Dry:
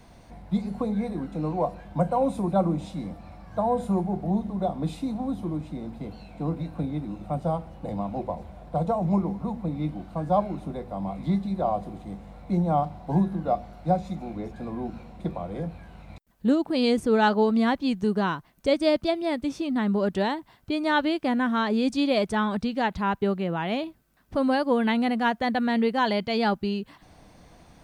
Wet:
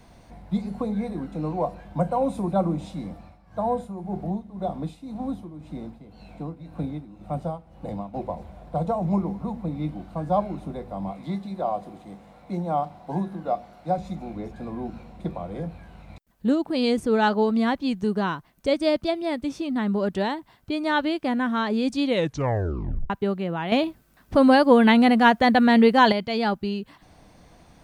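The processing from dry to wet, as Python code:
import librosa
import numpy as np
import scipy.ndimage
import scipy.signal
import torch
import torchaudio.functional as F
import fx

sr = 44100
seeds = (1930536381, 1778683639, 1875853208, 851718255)

y = fx.tremolo(x, sr, hz=1.9, depth=0.74, at=(3.12, 8.13), fade=0.02)
y = fx.highpass(y, sr, hz=290.0, slope=6, at=(11.12, 13.98))
y = fx.edit(y, sr, fx.tape_stop(start_s=22.03, length_s=1.07),
    fx.clip_gain(start_s=23.72, length_s=2.4, db=7.5), tone=tone)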